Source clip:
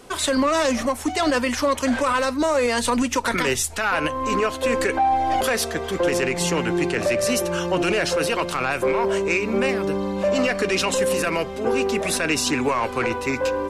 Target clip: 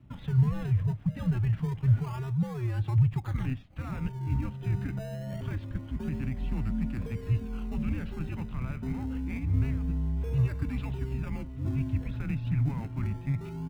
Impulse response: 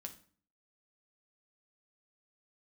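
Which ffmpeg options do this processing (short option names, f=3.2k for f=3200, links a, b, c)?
-filter_complex "[0:a]highpass=f=200:t=q:w=0.5412,highpass=f=200:t=q:w=1.307,lowpass=f=3.4k:t=q:w=0.5176,lowpass=f=3.4k:t=q:w=0.7071,lowpass=f=3.4k:t=q:w=1.932,afreqshift=-130,equalizer=f=200:t=o:w=1.2:g=-6,asplit=2[a][b];[b]acrusher=samples=27:mix=1:aa=0.000001:lfo=1:lforange=27:lforate=0.26,volume=-6dB[c];[a][c]amix=inputs=2:normalize=0,firequalizer=gain_entry='entry(150,0);entry(390,-25);entry(860,-23)':delay=0.05:min_phase=1"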